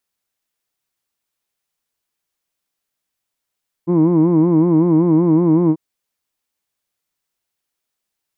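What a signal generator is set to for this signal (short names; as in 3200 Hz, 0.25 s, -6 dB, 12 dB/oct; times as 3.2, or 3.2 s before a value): formant vowel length 1.89 s, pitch 166 Hz, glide 0 st, vibrato depth 1.2 st, F1 310 Hz, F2 1000 Hz, F3 2200 Hz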